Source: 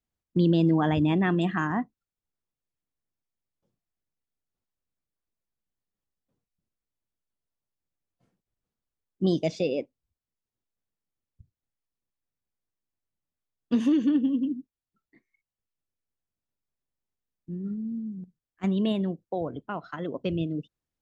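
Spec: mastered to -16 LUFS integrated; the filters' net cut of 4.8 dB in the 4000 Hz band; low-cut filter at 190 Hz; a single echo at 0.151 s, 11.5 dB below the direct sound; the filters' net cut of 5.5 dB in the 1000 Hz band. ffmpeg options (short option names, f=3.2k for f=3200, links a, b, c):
-af "highpass=190,equalizer=f=1k:t=o:g=-7.5,equalizer=f=4k:t=o:g=-6,aecho=1:1:151:0.266,volume=13dB"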